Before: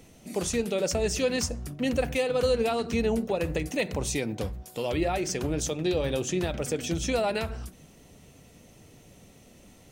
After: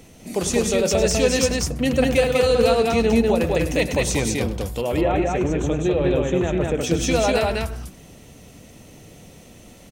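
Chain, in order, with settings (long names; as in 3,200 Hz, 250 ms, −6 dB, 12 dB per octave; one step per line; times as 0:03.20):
0:04.81–0:06.81: moving average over 9 samples
loudspeakers that aren't time-aligned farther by 35 metres −12 dB, 68 metres −2 dB
level +6 dB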